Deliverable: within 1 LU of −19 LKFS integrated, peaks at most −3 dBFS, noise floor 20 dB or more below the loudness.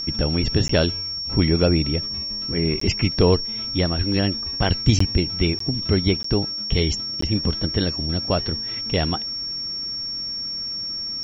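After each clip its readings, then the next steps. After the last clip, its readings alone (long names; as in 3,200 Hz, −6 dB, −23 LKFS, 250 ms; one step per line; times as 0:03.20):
number of dropouts 6; longest dropout 14 ms; interfering tone 5,500 Hz; level of the tone −26 dBFS; integrated loudness −22.0 LKFS; sample peak −2.0 dBFS; target loudness −19.0 LKFS
→ repair the gap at 0:00.68/0:02.80/0:04.99/0:05.59/0:06.23/0:07.21, 14 ms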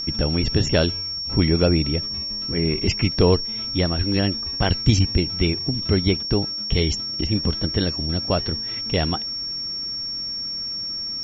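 number of dropouts 0; interfering tone 5,500 Hz; level of the tone −26 dBFS
→ notch filter 5,500 Hz, Q 30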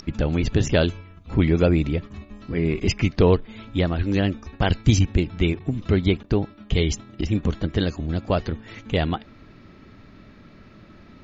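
interfering tone none found; integrated loudness −23.0 LKFS; sample peak −2.5 dBFS; target loudness −19.0 LKFS
→ level +4 dB
brickwall limiter −3 dBFS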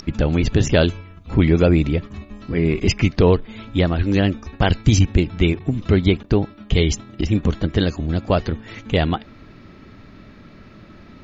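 integrated loudness −19.5 LKFS; sample peak −3.0 dBFS; background noise floor −45 dBFS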